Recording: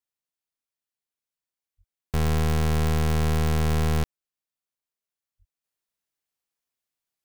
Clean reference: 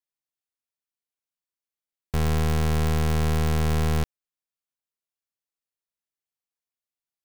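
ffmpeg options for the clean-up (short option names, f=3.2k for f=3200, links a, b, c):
-filter_complex "[0:a]asplit=3[a][b][c];[a]afade=t=out:st=1.77:d=0.02[d];[b]highpass=f=140:w=0.5412,highpass=f=140:w=1.3066,afade=t=in:st=1.77:d=0.02,afade=t=out:st=1.89:d=0.02[e];[c]afade=t=in:st=1.89:d=0.02[f];[d][e][f]amix=inputs=3:normalize=0,asplit=3[g][h][i];[g]afade=t=out:st=5.38:d=0.02[j];[h]highpass=f=140:w=0.5412,highpass=f=140:w=1.3066,afade=t=in:st=5.38:d=0.02,afade=t=out:st=5.5:d=0.02[k];[i]afade=t=in:st=5.5:d=0.02[l];[j][k][l]amix=inputs=3:normalize=0,asetnsamples=n=441:p=0,asendcmd='5.64 volume volume -5dB',volume=0dB"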